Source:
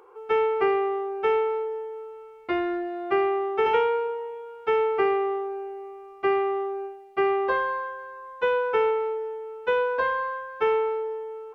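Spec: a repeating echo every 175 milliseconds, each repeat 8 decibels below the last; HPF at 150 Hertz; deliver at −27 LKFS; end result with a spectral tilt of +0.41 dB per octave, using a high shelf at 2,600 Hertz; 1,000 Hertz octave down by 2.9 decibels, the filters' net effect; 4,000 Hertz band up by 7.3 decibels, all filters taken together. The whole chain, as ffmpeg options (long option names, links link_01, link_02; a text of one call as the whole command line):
ffmpeg -i in.wav -af "highpass=150,equalizer=frequency=1000:width_type=o:gain=-5,highshelf=frequency=2600:gain=8,equalizer=frequency=4000:width_type=o:gain=4.5,aecho=1:1:175|350|525|700|875:0.398|0.159|0.0637|0.0255|0.0102,volume=-1.5dB" out.wav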